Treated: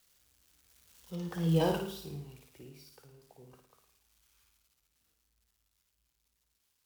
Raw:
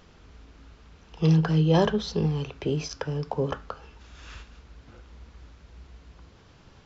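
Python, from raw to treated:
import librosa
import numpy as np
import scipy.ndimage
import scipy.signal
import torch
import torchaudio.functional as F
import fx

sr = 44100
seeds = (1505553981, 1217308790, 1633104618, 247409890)

y = x + 0.5 * 10.0 ** (-26.5 / 20.0) * np.diff(np.sign(x), prepend=np.sign(x[:1]))
y = fx.doppler_pass(y, sr, speed_mps=30, closest_m=3.4, pass_at_s=1.56)
y = fx.room_flutter(y, sr, wall_m=9.4, rt60_s=0.59)
y = F.gain(torch.from_numpy(y), -6.5).numpy()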